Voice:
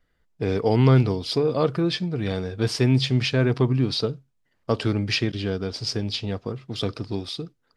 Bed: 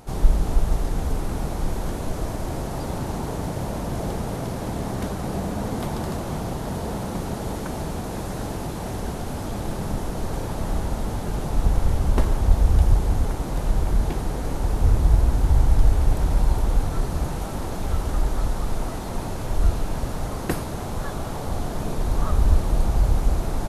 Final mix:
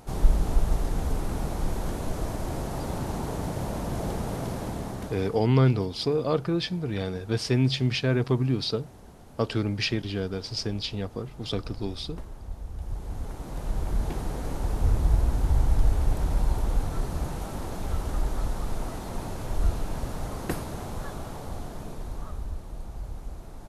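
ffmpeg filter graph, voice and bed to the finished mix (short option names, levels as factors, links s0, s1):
-filter_complex "[0:a]adelay=4700,volume=0.668[s0];[1:a]volume=3.98,afade=t=out:st=4.53:d=0.95:silence=0.141254,afade=t=in:st=12.76:d=1.44:silence=0.177828,afade=t=out:st=20.72:d=1.8:silence=0.237137[s1];[s0][s1]amix=inputs=2:normalize=0"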